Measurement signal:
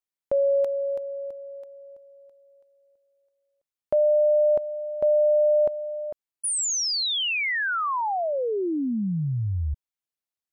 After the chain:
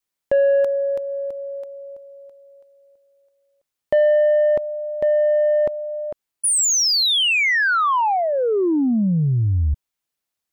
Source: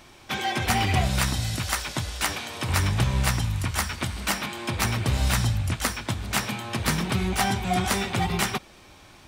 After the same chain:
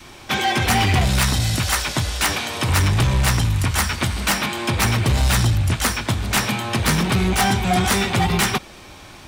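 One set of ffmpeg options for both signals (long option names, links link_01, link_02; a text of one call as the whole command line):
ffmpeg -i in.wav -af "adynamicequalizer=threshold=0.0178:dfrequency=640:dqfactor=2.3:tfrequency=640:tqfactor=2.3:attack=5:release=100:ratio=0.438:range=3:mode=cutabove:tftype=bell,asoftclip=type=tanh:threshold=-20.5dB,volume=9dB" out.wav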